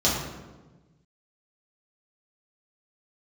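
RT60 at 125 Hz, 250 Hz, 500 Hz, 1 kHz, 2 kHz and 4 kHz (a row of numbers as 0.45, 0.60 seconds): 1.9, 1.6, 1.3, 1.1, 0.90, 0.75 seconds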